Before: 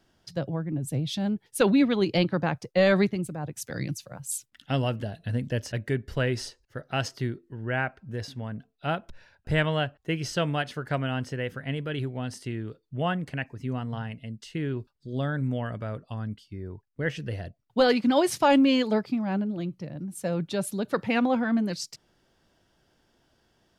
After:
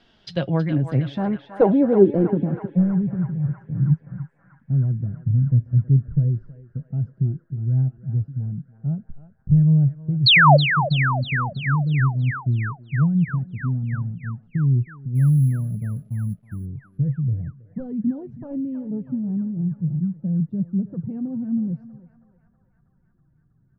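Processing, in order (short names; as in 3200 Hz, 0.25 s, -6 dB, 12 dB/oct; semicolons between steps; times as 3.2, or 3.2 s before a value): in parallel at 0 dB: limiter -22 dBFS, peak gain reduction 10.5 dB; on the sum: low-pass sweep 3500 Hz -> 150 Hz, 0.31–2.97; 15.15–16.66 sample-rate reducer 11000 Hz, jitter 0%; flange 0.44 Hz, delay 4.1 ms, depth 4.1 ms, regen +52%; 10.26–10.57 painted sound fall 520–4600 Hz -17 dBFS; on a send: narrowing echo 0.321 s, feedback 82%, band-pass 1500 Hz, level -7 dB; on the sum: gain +4.5 dB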